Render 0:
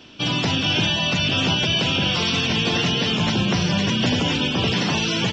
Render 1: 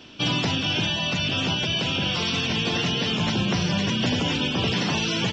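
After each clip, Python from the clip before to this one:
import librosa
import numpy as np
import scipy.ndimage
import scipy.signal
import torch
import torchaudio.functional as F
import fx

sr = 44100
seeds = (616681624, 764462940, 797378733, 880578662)

y = fx.rider(x, sr, range_db=10, speed_s=0.5)
y = y * 10.0 ** (-3.5 / 20.0)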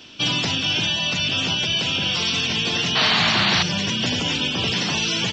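y = fx.high_shelf(x, sr, hz=2100.0, db=9.0)
y = fx.spec_paint(y, sr, seeds[0], shape='noise', start_s=2.95, length_s=0.68, low_hz=600.0, high_hz=4700.0, level_db=-18.0)
y = y * 10.0 ** (-2.0 / 20.0)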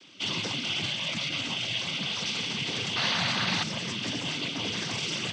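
y = fx.noise_vocoder(x, sr, seeds[1], bands=16)
y = y * 10.0 ** (-8.5 / 20.0)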